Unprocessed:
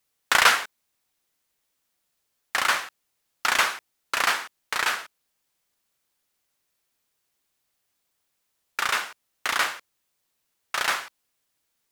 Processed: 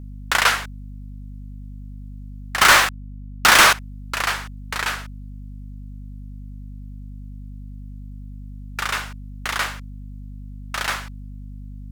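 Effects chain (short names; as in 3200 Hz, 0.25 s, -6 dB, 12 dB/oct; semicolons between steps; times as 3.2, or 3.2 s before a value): 2.61–3.73 sample leveller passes 5; hum 50 Hz, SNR 11 dB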